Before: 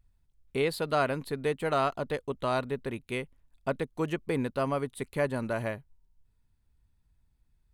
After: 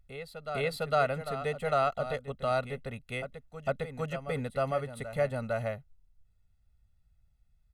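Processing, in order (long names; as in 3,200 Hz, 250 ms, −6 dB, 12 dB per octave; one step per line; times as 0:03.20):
high-shelf EQ 9,100 Hz −5.5 dB
comb filter 1.5 ms, depth 98%
backwards echo 455 ms −10.5 dB
level −4.5 dB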